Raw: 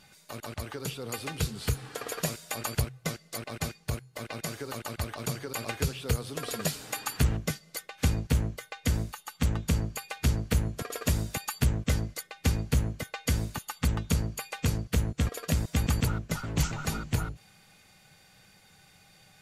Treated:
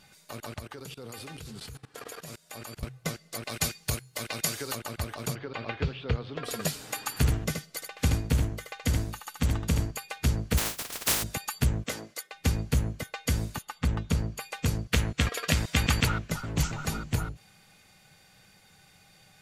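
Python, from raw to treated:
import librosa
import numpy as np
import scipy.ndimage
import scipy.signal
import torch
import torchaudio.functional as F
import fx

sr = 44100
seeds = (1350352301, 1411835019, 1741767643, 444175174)

y = fx.level_steps(x, sr, step_db=21, at=(0.59, 2.83))
y = fx.high_shelf(y, sr, hz=2200.0, db=10.5, at=(3.43, 4.74), fade=0.02)
y = fx.lowpass(y, sr, hz=3700.0, slope=24, at=(5.34, 6.44), fade=0.02)
y = fx.echo_single(y, sr, ms=76, db=-5.5, at=(7.16, 9.9), fade=0.02)
y = fx.spec_flatten(y, sr, power=0.14, at=(10.57, 11.22), fade=0.02)
y = fx.highpass(y, sr, hz=340.0, slope=12, at=(11.86, 12.32))
y = fx.lowpass(y, sr, hz=fx.line((13.61, 2700.0), (14.4, 6100.0)), slope=6, at=(13.61, 14.4), fade=0.02)
y = fx.peak_eq(y, sr, hz=2500.0, db=10.5, octaves=2.7, at=(14.93, 16.3))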